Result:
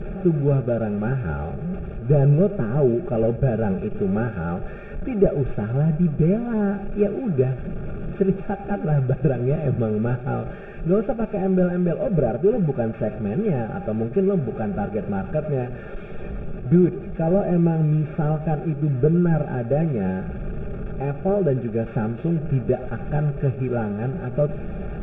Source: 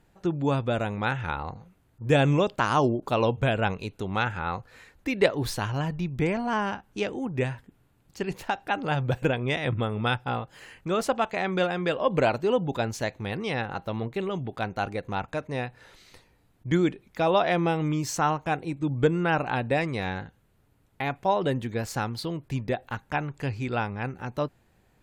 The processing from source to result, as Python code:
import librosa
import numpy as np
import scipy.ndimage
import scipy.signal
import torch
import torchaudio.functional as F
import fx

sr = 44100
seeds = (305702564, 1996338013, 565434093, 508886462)

p1 = fx.delta_mod(x, sr, bps=16000, step_db=-32.0)
p2 = fx.peak_eq(p1, sr, hz=250.0, db=-8.0, octaves=0.38)
p3 = p2 + 0.63 * np.pad(p2, (int(5.0 * sr / 1000.0), 0))[:len(p2)]
p4 = fx.leveller(p3, sr, passes=1)
p5 = fx.rider(p4, sr, range_db=4, speed_s=0.5)
p6 = p4 + F.gain(torch.from_numpy(p5), -1.0).numpy()
p7 = np.convolve(p6, np.full(44, 1.0 / 44))[:len(p6)]
y = p7 + fx.echo_single(p7, sr, ms=100, db=-16.5, dry=0)